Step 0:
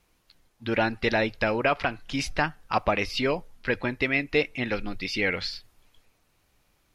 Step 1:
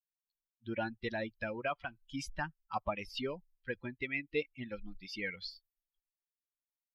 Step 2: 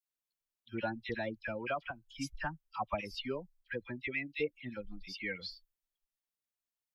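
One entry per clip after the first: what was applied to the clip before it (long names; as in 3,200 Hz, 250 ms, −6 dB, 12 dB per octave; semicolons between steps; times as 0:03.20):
spectral dynamics exaggerated over time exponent 2; level −8.5 dB
all-pass dispersion lows, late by 60 ms, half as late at 1,600 Hz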